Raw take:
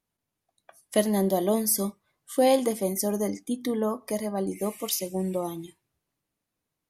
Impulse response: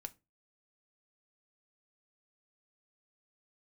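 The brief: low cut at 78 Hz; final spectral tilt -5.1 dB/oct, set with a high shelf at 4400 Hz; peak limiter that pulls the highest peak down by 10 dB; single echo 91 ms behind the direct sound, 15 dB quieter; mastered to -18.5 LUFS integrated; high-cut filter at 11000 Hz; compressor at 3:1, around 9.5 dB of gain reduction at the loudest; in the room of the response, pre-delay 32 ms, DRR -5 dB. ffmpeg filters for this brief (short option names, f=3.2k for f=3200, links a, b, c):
-filter_complex "[0:a]highpass=78,lowpass=11k,highshelf=f=4.4k:g=-4,acompressor=threshold=-30dB:ratio=3,alimiter=level_in=3dB:limit=-24dB:level=0:latency=1,volume=-3dB,aecho=1:1:91:0.178,asplit=2[a][b];[1:a]atrim=start_sample=2205,adelay=32[c];[b][c]afir=irnorm=-1:irlink=0,volume=9.5dB[d];[a][d]amix=inputs=2:normalize=0,volume=11.5dB"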